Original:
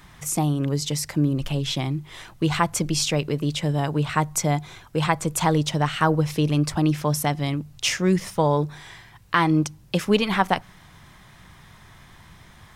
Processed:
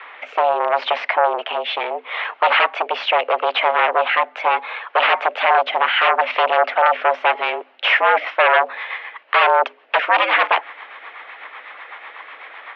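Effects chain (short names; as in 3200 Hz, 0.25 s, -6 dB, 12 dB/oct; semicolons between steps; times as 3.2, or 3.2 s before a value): rotary speaker horn 0.75 Hz, later 8 Hz, at 7.47; sine folder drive 19 dB, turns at -4.5 dBFS; mistuned SSB +110 Hz 450–2800 Hz; gain -3 dB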